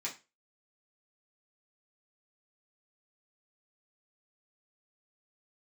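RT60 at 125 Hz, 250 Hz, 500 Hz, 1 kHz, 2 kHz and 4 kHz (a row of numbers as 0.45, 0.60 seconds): 0.30, 0.25, 0.30, 0.25, 0.25, 0.25 seconds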